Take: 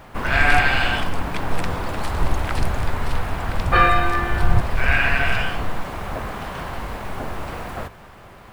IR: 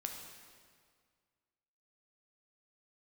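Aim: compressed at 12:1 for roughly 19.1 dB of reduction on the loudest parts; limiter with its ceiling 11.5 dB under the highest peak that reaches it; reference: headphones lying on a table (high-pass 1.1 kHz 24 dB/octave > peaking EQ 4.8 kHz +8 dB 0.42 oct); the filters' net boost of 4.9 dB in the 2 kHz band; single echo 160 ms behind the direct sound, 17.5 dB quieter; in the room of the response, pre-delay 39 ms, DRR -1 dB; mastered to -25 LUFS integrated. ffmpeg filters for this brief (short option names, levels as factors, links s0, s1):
-filter_complex "[0:a]equalizer=f=2000:t=o:g=6.5,acompressor=threshold=0.0398:ratio=12,alimiter=level_in=1.78:limit=0.0631:level=0:latency=1,volume=0.562,aecho=1:1:160:0.133,asplit=2[s0][s1];[1:a]atrim=start_sample=2205,adelay=39[s2];[s1][s2]afir=irnorm=-1:irlink=0,volume=1.26[s3];[s0][s3]amix=inputs=2:normalize=0,highpass=f=1100:w=0.5412,highpass=f=1100:w=1.3066,equalizer=f=4800:t=o:w=0.42:g=8,volume=4.22"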